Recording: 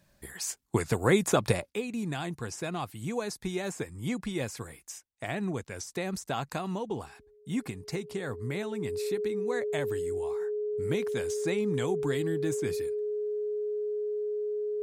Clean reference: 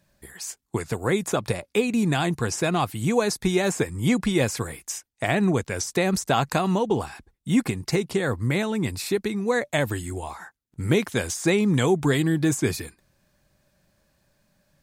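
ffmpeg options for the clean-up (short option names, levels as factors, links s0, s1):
-af "bandreject=f=420:w=30,asetnsamples=n=441:p=0,asendcmd='1.7 volume volume 11dB',volume=1"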